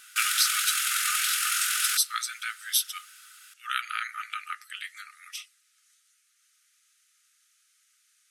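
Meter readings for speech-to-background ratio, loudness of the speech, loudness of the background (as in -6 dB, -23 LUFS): -5.0 dB, -30.0 LUFS, -25.0 LUFS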